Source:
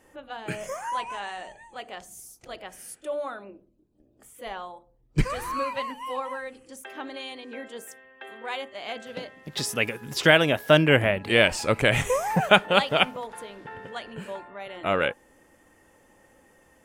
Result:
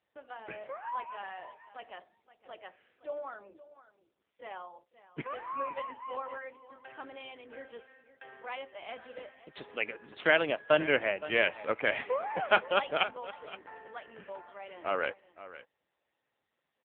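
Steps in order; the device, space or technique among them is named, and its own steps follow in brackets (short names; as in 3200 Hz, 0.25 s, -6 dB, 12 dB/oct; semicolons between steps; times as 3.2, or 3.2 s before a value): gate -50 dBFS, range -20 dB; satellite phone (BPF 360–3000 Hz; echo 0.519 s -16 dB; gain -5.5 dB; AMR-NB 6.7 kbps 8000 Hz)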